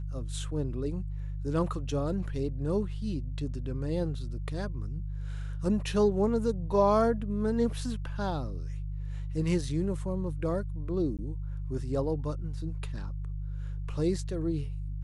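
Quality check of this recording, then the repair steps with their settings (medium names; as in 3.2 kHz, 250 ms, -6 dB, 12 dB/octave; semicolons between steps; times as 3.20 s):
hum 50 Hz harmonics 3 -35 dBFS
11.17–11.19 s: dropout 17 ms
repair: de-hum 50 Hz, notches 3; interpolate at 11.17 s, 17 ms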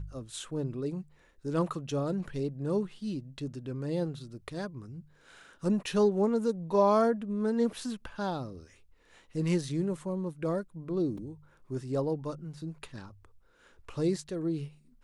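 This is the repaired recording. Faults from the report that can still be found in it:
nothing left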